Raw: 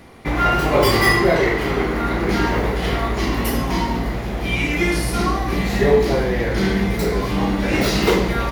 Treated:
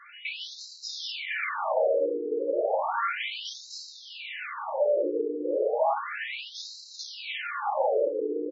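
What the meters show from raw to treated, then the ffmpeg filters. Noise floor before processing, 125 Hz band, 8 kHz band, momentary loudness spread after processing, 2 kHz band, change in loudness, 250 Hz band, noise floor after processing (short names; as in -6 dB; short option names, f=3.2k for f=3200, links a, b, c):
-24 dBFS, under -40 dB, -14.0 dB, 13 LU, -13.0 dB, -10.5 dB, -19.5 dB, -47 dBFS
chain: -af "highpass=f=83:w=0.5412,highpass=f=83:w=1.3066,highshelf=f=4.5k:g=-7.5,bandreject=f=50:t=h:w=6,bandreject=f=100:t=h:w=6,bandreject=f=150:t=h:w=6,bandreject=f=200:t=h:w=6,bandreject=f=250:t=h:w=6,bandreject=f=300:t=h:w=6,aecho=1:1:3.3:0.64,acompressor=threshold=-18dB:ratio=4,aresample=16000,asoftclip=type=tanh:threshold=-19dB,aresample=44100,afreqshift=240,aeval=exprs='val(0)+0.00398*sin(2*PI*2900*n/s)':c=same,afftfilt=real='re*between(b*sr/1024,350*pow(5500/350,0.5+0.5*sin(2*PI*0.33*pts/sr))/1.41,350*pow(5500/350,0.5+0.5*sin(2*PI*0.33*pts/sr))*1.41)':imag='im*between(b*sr/1024,350*pow(5500/350,0.5+0.5*sin(2*PI*0.33*pts/sr))/1.41,350*pow(5500/350,0.5+0.5*sin(2*PI*0.33*pts/sr))*1.41)':win_size=1024:overlap=0.75,volume=2.5dB"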